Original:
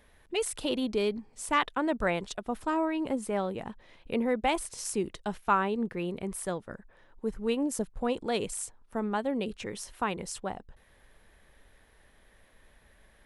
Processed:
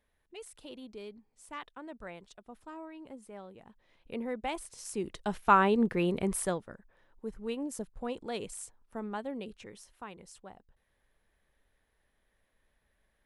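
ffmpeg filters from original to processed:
ffmpeg -i in.wav -af "volume=4.5dB,afade=type=in:start_time=3.67:duration=0.52:silence=0.375837,afade=type=in:start_time=4.86:duration=0.84:silence=0.237137,afade=type=out:start_time=6.34:duration=0.4:silence=0.266073,afade=type=out:start_time=9.21:duration=0.72:silence=0.421697" out.wav

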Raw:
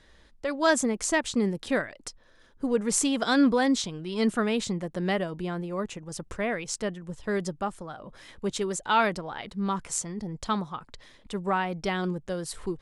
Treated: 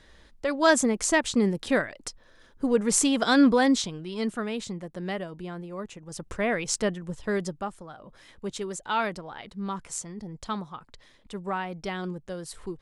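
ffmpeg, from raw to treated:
ffmpeg -i in.wav -af "volume=12.5dB,afade=type=out:start_time=3.67:duration=0.62:silence=0.421697,afade=type=in:start_time=5.97:duration=0.76:silence=0.316228,afade=type=out:start_time=6.73:duration=1.03:silence=0.354813" out.wav

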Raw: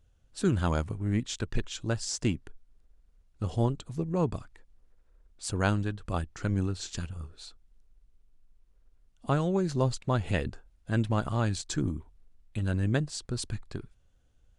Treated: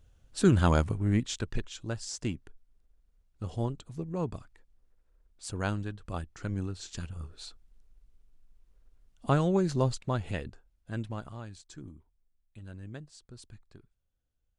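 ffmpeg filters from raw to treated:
ffmpeg -i in.wav -af "volume=10.5dB,afade=type=out:start_time=0.86:duration=0.84:silence=0.354813,afade=type=in:start_time=6.88:duration=0.55:silence=0.473151,afade=type=out:start_time=9.56:duration=0.92:silence=0.334965,afade=type=out:start_time=10.99:duration=0.47:silence=0.398107" out.wav

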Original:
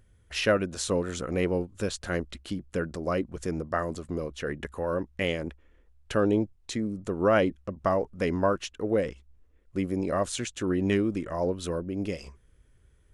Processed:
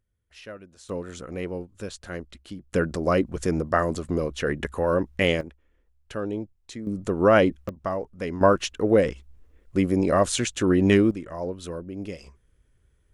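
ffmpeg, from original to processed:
ffmpeg -i in.wav -af "asetnsamples=nb_out_samples=441:pad=0,asendcmd='0.89 volume volume -5dB;2.73 volume volume 6.5dB;5.41 volume volume -6dB;6.87 volume volume 5dB;7.69 volume volume -3dB;8.41 volume volume 7dB;11.11 volume volume -3dB',volume=-17dB" out.wav

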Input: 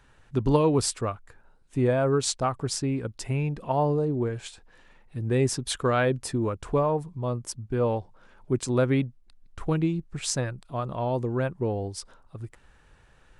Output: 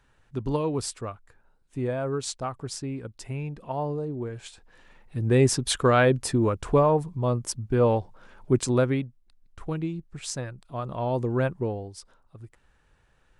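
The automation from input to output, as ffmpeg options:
ffmpeg -i in.wav -af "volume=11.5dB,afade=type=in:start_time=4.27:duration=1.06:silence=0.334965,afade=type=out:start_time=8.6:duration=0.43:silence=0.354813,afade=type=in:start_time=10.51:duration=0.95:silence=0.421697,afade=type=out:start_time=11.46:duration=0.39:silence=0.354813" out.wav

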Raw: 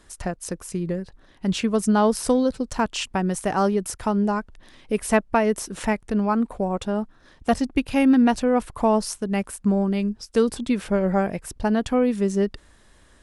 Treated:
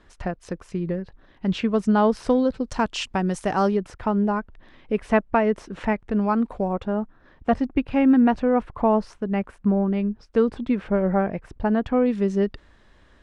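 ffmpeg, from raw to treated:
ffmpeg -i in.wav -af "asetnsamples=nb_out_samples=441:pad=0,asendcmd='2.65 lowpass f 6100;3.77 lowpass f 2600;6.21 lowpass f 4800;6.73 lowpass f 2100;12.06 lowpass f 3700',lowpass=3200" out.wav

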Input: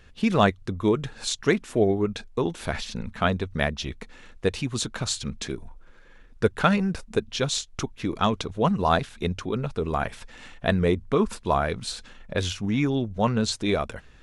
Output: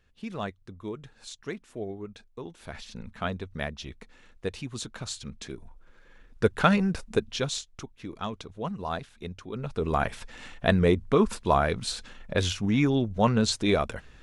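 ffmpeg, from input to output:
ffmpeg -i in.wav -af "volume=11dB,afade=type=in:start_time=2.56:duration=0.45:silence=0.473151,afade=type=in:start_time=5.44:duration=1.17:silence=0.421697,afade=type=out:start_time=7.16:duration=0.64:silence=0.298538,afade=type=in:start_time=9.48:duration=0.45:silence=0.266073" out.wav

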